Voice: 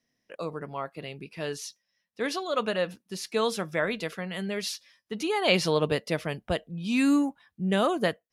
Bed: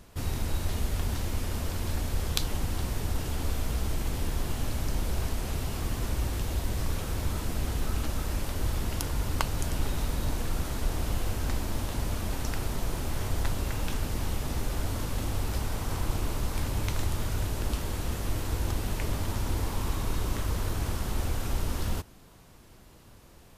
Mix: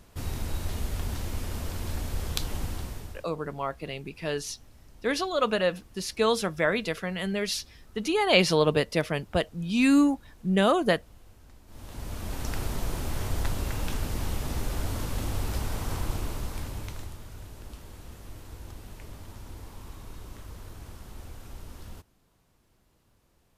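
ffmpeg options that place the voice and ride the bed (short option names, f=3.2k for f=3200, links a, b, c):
-filter_complex "[0:a]adelay=2850,volume=2.5dB[a];[1:a]volume=21.5dB,afade=t=out:st=2.65:d=0.62:silence=0.0841395,afade=t=in:st=11.66:d=0.92:silence=0.0668344,afade=t=out:st=15.89:d=1.31:silence=0.211349[b];[a][b]amix=inputs=2:normalize=0"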